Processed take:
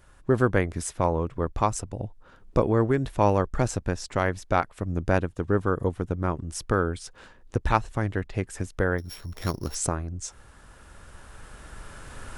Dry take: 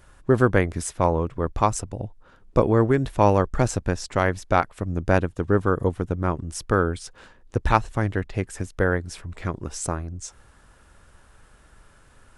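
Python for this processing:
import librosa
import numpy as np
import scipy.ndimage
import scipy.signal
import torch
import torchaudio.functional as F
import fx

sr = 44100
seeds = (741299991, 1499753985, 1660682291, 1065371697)

y = fx.sample_sort(x, sr, block=8, at=(8.98, 9.75))
y = fx.recorder_agc(y, sr, target_db=-10.0, rise_db_per_s=6.1, max_gain_db=30)
y = F.gain(torch.from_numpy(y), -3.5).numpy()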